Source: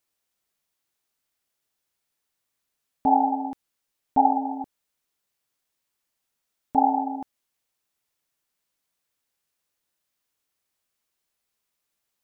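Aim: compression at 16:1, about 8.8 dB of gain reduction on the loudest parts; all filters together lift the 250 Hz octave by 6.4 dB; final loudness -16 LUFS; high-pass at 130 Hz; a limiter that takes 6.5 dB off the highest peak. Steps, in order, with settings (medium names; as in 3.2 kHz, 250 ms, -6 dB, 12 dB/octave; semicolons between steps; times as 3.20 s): high-pass 130 Hz; peaking EQ 250 Hz +7 dB; compression 16:1, threshold -21 dBFS; trim +14.5 dB; peak limiter -4 dBFS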